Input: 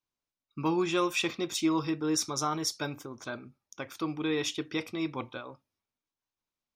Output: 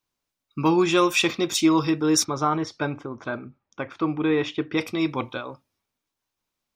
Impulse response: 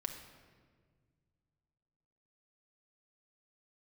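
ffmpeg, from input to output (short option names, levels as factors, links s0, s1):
-filter_complex "[0:a]asplit=3[s0][s1][s2];[s0]afade=t=out:st=2.23:d=0.02[s3];[s1]lowpass=2200,afade=t=in:st=2.23:d=0.02,afade=t=out:st=4.76:d=0.02[s4];[s2]afade=t=in:st=4.76:d=0.02[s5];[s3][s4][s5]amix=inputs=3:normalize=0,volume=2.66"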